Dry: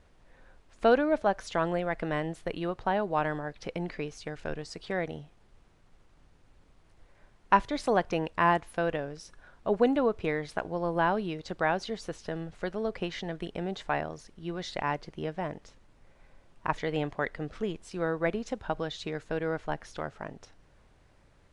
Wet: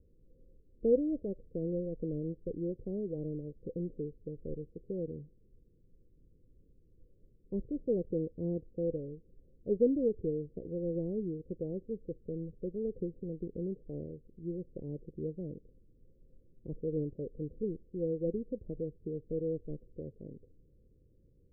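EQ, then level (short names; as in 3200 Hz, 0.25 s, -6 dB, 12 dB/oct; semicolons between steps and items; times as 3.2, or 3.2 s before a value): Chebyshev low-pass 510 Hz, order 6; -2.0 dB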